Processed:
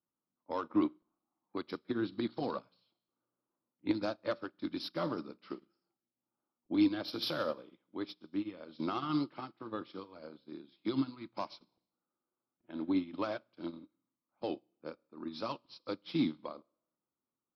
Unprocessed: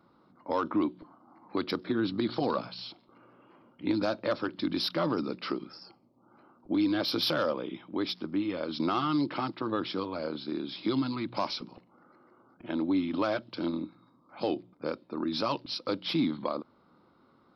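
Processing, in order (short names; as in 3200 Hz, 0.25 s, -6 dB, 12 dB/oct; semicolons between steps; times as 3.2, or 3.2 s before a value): low-pass opened by the level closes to 1300 Hz, open at -28.5 dBFS; Schroeder reverb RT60 0.89 s, combs from 26 ms, DRR 12.5 dB; upward expander 2.5:1, over -44 dBFS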